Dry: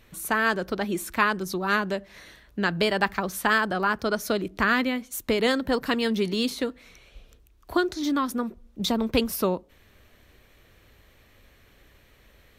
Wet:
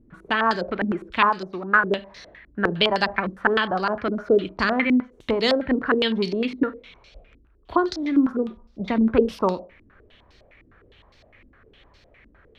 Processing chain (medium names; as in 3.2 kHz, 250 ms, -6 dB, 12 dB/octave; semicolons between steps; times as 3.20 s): 1.29–1.84 s: bass shelf 200 Hz -9.5 dB; Schroeder reverb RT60 0.33 s, combs from 28 ms, DRR 14.5 dB; step-sequenced low-pass 9.8 Hz 290–4900 Hz